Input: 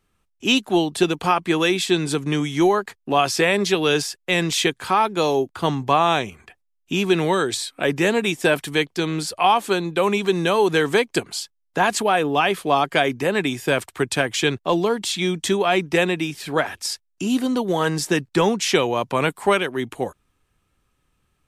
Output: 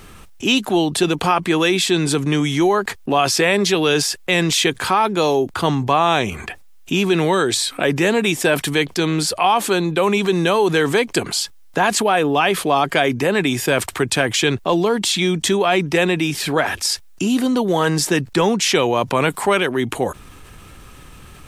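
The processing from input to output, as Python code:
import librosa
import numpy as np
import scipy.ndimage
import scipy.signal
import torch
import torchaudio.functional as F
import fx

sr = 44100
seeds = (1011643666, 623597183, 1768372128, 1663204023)

y = fx.env_flatten(x, sr, amount_pct=50)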